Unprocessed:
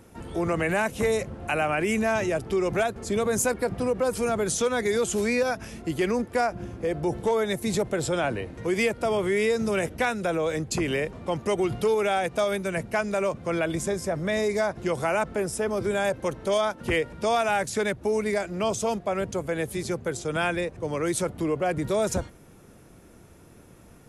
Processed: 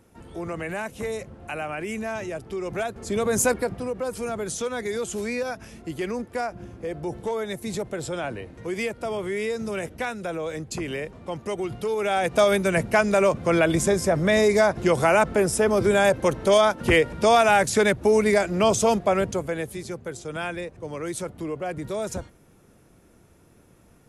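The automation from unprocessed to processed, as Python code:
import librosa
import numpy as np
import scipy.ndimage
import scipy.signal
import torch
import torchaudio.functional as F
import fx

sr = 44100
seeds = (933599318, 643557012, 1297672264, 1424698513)

y = fx.gain(x, sr, db=fx.line((2.58, -6.0), (3.51, 4.0), (3.81, -4.0), (11.87, -4.0), (12.41, 6.5), (19.1, 6.5), (19.83, -4.5)))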